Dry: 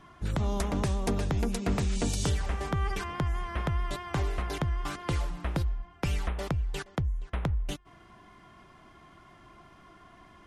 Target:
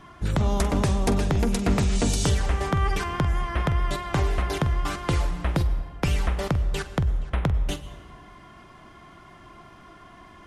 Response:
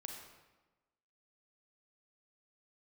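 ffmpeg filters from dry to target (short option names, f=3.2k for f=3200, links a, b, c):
-filter_complex "[0:a]asplit=2[a][b];[1:a]atrim=start_sample=2205,asetrate=30870,aresample=44100,adelay=46[c];[b][c]afir=irnorm=-1:irlink=0,volume=-10dB[d];[a][d]amix=inputs=2:normalize=0,volume=6dB"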